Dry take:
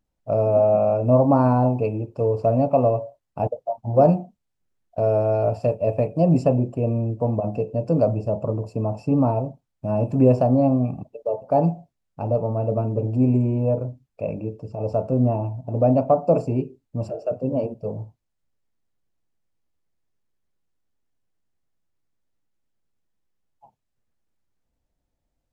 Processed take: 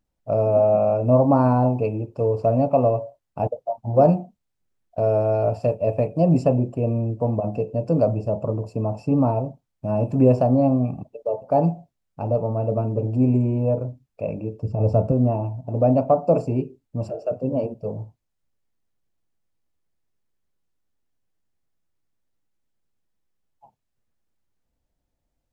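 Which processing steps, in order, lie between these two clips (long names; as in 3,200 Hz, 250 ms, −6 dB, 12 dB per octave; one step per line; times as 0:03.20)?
0:14.63–0:15.12: low-shelf EQ 250 Hz +12 dB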